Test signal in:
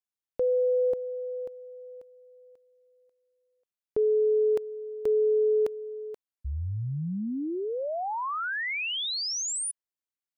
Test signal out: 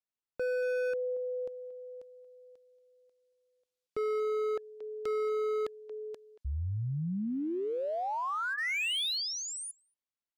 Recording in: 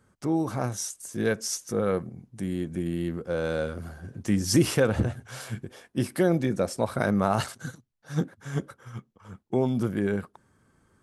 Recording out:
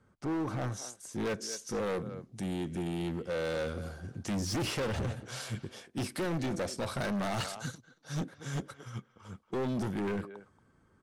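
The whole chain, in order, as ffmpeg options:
-filter_complex "[0:a]asplit=2[a][b];[b]adelay=230,highpass=300,lowpass=3.4k,asoftclip=type=hard:threshold=-17.5dB,volume=-16dB[c];[a][c]amix=inputs=2:normalize=0,acrossover=split=630|3300[d][e][f];[f]dynaudnorm=f=130:g=21:m=13dB[g];[d][e][g]amix=inputs=3:normalize=0,aemphasis=mode=reproduction:type=50fm,bandreject=f=1.7k:w=27,acrossover=split=3500[h][i];[i]acompressor=threshold=-36dB:ratio=4:attack=1:release=60[j];[h][j]amix=inputs=2:normalize=0,volume=27.5dB,asoftclip=hard,volume=-27.5dB,volume=-2.5dB"

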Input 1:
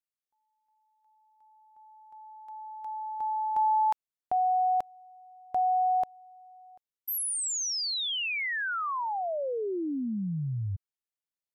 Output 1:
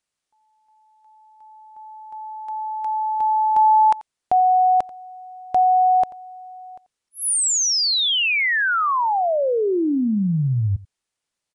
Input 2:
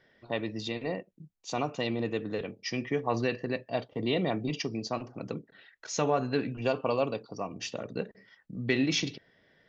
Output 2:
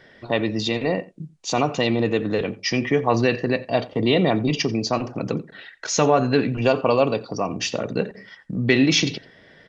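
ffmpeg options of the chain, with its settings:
-filter_complex "[0:a]asplit=2[a][b];[b]acompressor=threshold=-37dB:ratio=6:attack=0.41:release=80:knee=1:detection=peak,volume=-0.5dB[c];[a][c]amix=inputs=2:normalize=0,asplit=2[d][e];[e]adelay=87.46,volume=-20dB,highshelf=f=4k:g=-1.97[f];[d][f]amix=inputs=2:normalize=0,aresample=22050,aresample=44100,volume=8.5dB"

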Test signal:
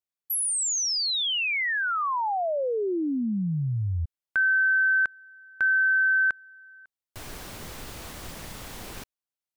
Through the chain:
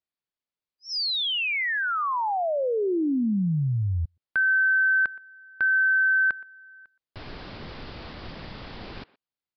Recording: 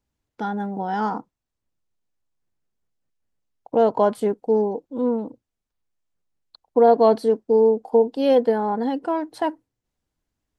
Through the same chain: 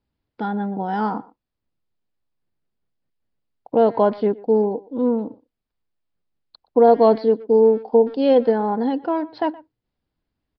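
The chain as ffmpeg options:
-filter_complex "[0:a]equalizer=f=210:w=0.48:g=3,asplit=2[a][b];[b]adelay=120,highpass=300,lowpass=3.4k,asoftclip=type=hard:threshold=-12dB,volume=-20dB[c];[a][c]amix=inputs=2:normalize=0,aresample=11025,aresample=44100"

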